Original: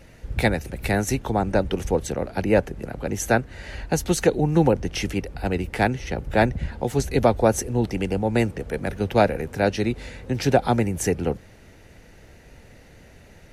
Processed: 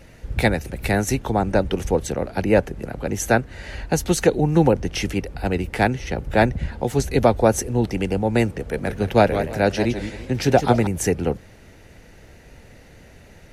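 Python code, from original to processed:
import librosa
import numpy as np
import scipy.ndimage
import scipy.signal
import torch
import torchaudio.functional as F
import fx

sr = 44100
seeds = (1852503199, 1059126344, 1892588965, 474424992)

y = fx.echo_warbled(x, sr, ms=166, feedback_pct=31, rate_hz=2.8, cents=202, wet_db=-9, at=(8.61, 10.87))
y = y * librosa.db_to_amplitude(2.0)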